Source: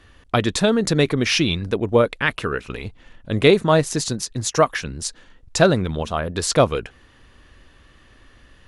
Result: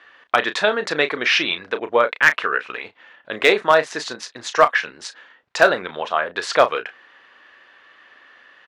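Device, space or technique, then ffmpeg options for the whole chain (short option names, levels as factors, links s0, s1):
megaphone: -filter_complex "[0:a]highpass=670,lowpass=3100,equalizer=f=1700:t=o:w=0.56:g=4,asoftclip=type=hard:threshold=0.376,asplit=2[s0][s1];[s1]adelay=33,volume=0.282[s2];[s0][s2]amix=inputs=2:normalize=0,volume=1.78"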